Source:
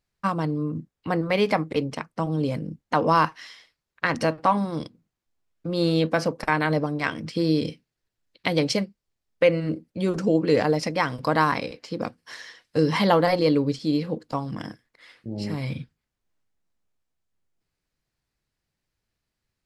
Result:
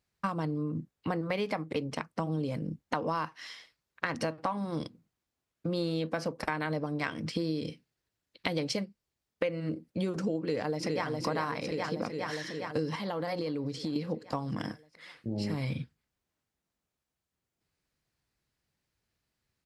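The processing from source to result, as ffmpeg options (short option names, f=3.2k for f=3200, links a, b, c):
-filter_complex "[0:a]asplit=2[a][b];[b]afade=t=in:st=10.39:d=0.01,afade=t=out:st=11.07:d=0.01,aecho=0:1:410|820|1230|1640|2050|2460|2870|3280|3690|4100:0.530884|0.345075|0.224299|0.145794|0.0947662|0.061598|0.0400387|0.0260252|0.0169164|0.0109956[c];[a][c]amix=inputs=2:normalize=0,asettb=1/sr,asplit=3[d][e][f];[d]atrim=end=12.954[g];[e]atrim=start=12.95:end=13.96,asetpts=PTS-STARTPTS,afade=t=in:d=0.004:c=qsin,afade=t=out:st=1.006:d=0.004:c=qsin,acompressor=threshold=-28dB:ratio=12:attack=3.2:release=140:knee=1:detection=peak[h];[f]atrim=start=13.956[i];[g][h]acrossfade=d=0.004:c1=hsin:c2=qsin[j];[j][i]acrossfade=d=0.004:c1=qsin:c2=hsin,highpass=47,acompressor=threshold=-29dB:ratio=6"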